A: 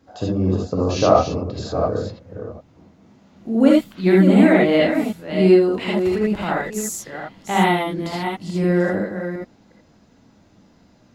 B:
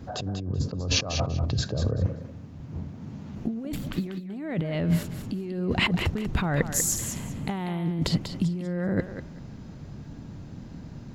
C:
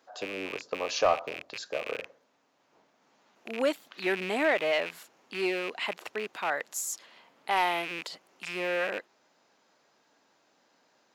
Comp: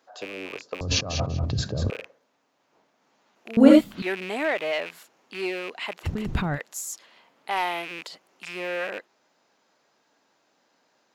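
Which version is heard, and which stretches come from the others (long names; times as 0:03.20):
C
0:00.81–0:01.90: punch in from B
0:03.57–0:04.02: punch in from A
0:06.06–0:06.56: punch in from B, crossfade 0.06 s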